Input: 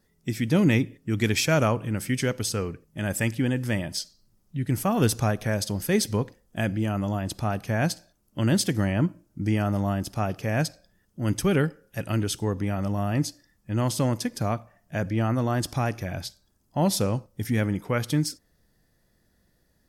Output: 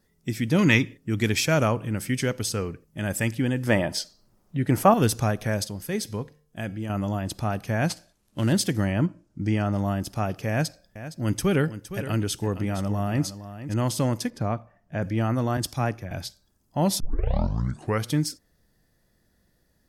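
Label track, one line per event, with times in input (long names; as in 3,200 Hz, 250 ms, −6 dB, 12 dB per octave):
0.590000	0.940000	gain on a spectral selection 890–7,400 Hz +8 dB
3.670000	4.940000	parametric band 780 Hz +11 dB 2.9 octaves
5.670000	6.900000	tuned comb filter 150 Hz, decay 0.61 s, harmonics odd, mix 50%
7.870000	8.530000	variable-slope delta modulation 64 kbit/s
9.060000	9.780000	low-pass filter 7,600 Hz
10.490000	13.740000	single-tap delay 464 ms −12.5 dB
14.300000	15.020000	low-pass filter 1,900 Hz 6 dB per octave
15.570000	16.110000	multiband upward and downward expander depth 100%
17.000000	17.000000	tape start 1.06 s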